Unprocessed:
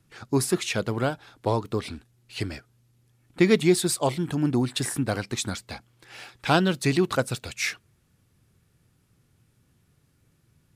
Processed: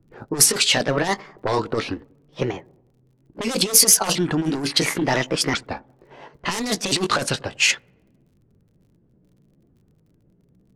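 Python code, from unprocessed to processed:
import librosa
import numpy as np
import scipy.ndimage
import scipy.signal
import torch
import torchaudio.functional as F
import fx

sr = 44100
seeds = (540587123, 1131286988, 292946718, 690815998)

p1 = fx.pitch_ramps(x, sr, semitones=5.5, every_ms=1384)
p2 = fx.level_steps(p1, sr, step_db=12)
p3 = p1 + F.gain(torch.from_numpy(p2), 2.0).numpy()
p4 = fx.fold_sine(p3, sr, drive_db=12, ceiling_db=-1.0)
p5 = fx.peak_eq(p4, sr, hz=97.0, db=-9.0, octaves=2.3)
p6 = fx.env_lowpass(p5, sr, base_hz=400.0, full_db=-3.5)
p7 = 10.0 ** (-0.5 / 20.0) * np.tanh(p6 / 10.0 ** (-0.5 / 20.0))
p8 = fx.over_compress(p7, sr, threshold_db=-12.0, ratio=-0.5)
p9 = fx.peak_eq(p8, sr, hz=8600.0, db=10.5, octaves=1.9)
p10 = fx.dmg_crackle(p9, sr, seeds[0], per_s=42.0, level_db=-45.0)
p11 = p10 + fx.echo_wet_lowpass(p10, sr, ms=94, feedback_pct=51, hz=810.0, wet_db=-23.5, dry=0)
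y = F.gain(torch.from_numpy(p11), -9.0).numpy()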